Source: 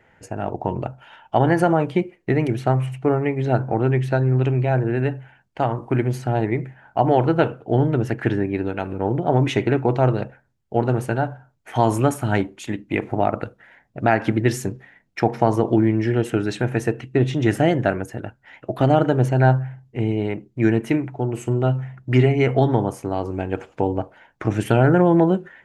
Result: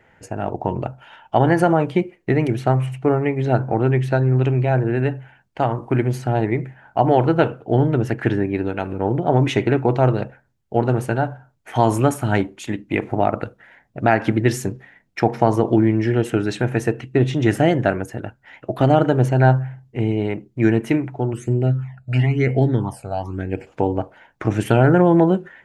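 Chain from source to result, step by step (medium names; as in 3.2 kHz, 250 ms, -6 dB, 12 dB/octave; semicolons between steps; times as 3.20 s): 21.33–23.67 s: phase shifter stages 12, 1 Hz, lowest notch 320–1200 Hz; trim +1.5 dB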